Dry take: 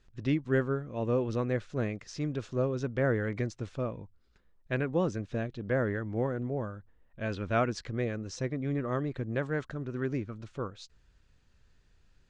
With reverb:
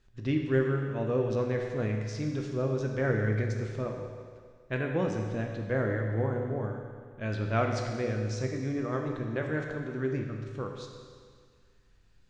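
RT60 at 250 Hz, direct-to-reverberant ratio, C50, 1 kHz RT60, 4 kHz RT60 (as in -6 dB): 1.9 s, 1.5 dB, 3.5 dB, 1.9 s, 1.9 s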